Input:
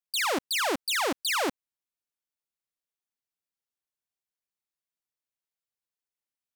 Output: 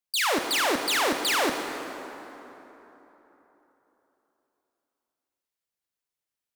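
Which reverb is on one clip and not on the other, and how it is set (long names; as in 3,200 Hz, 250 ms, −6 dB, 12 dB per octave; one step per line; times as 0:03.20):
dense smooth reverb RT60 3.7 s, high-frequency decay 0.55×, DRR 4 dB
level +2 dB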